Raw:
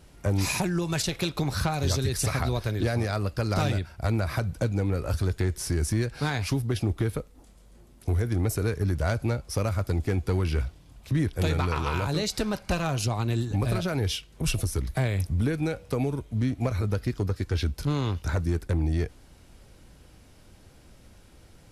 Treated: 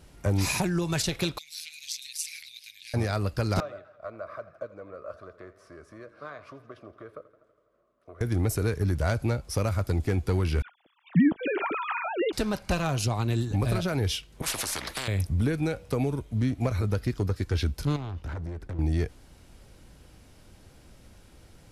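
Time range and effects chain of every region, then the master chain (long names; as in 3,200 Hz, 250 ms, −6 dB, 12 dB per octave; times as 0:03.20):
0:01.38–0:02.94: elliptic high-pass filter 2,300 Hz, stop band 50 dB + amplitude modulation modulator 160 Hz, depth 45%
0:03.60–0:08.21: pair of resonant band-passes 840 Hz, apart 0.91 octaves + feedback echo with a swinging delay time 82 ms, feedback 70%, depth 85 cents, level −17 dB
0:10.62–0:12.33: three sine waves on the formant tracks + all-pass dispersion lows, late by 48 ms, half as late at 1,600 Hz
0:14.42–0:15.08: low-pass filter 2,500 Hz 6 dB per octave + every bin compressed towards the loudest bin 10 to 1
0:17.96–0:18.79: low-pass filter 1,800 Hz 6 dB per octave + downward compressor 4 to 1, threshold −29 dBFS + hard clipping −31 dBFS
whole clip: no processing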